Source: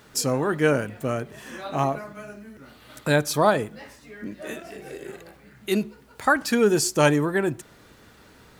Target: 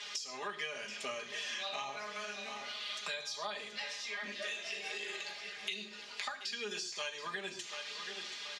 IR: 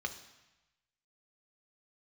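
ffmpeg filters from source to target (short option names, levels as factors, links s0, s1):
-filter_complex "[0:a]aderivative,acompressor=threshold=0.00562:ratio=6,equalizer=f=1700:t=o:w=1.1:g=-5,aecho=1:1:4.9:0.75[s0];[1:a]atrim=start_sample=2205,afade=t=out:st=0.19:d=0.01,atrim=end_sample=8820[s1];[s0][s1]afir=irnorm=-1:irlink=0,crystalizer=i=7.5:c=0,lowpass=f=4000:w=0.5412,lowpass=f=4000:w=1.3066,aecho=1:1:728|1456|2184|2912:0.178|0.0694|0.027|0.0105,acrossover=split=130[s2][s3];[s3]acompressor=threshold=0.00282:ratio=4[s4];[s2][s4]amix=inputs=2:normalize=0,bandreject=f=1400:w=9.6,volume=4.22"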